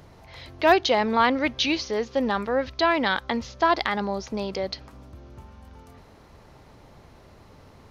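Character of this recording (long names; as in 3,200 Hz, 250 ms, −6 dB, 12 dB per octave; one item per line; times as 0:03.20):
background noise floor −51 dBFS
spectral slope −2.0 dB per octave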